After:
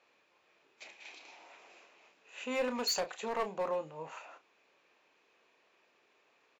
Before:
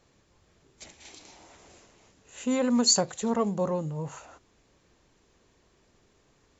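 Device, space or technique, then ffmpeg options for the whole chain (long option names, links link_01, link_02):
megaphone: -filter_complex "[0:a]highpass=540,lowpass=3600,equalizer=frequency=2500:width_type=o:width=0.24:gain=9.5,asoftclip=type=hard:threshold=-26.5dB,asplit=2[link_01][link_02];[link_02]adelay=32,volume=-10dB[link_03];[link_01][link_03]amix=inputs=2:normalize=0,volume=-1.5dB"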